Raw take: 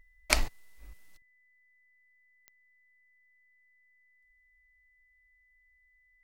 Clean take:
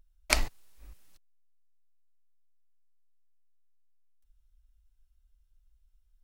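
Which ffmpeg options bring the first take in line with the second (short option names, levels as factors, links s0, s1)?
-af "adeclick=t=4,bandreject=f=2000:w=30,asetnsamples=n=441:p=0,asendcmd='1.22 volume volume 11.5dB',volume=1"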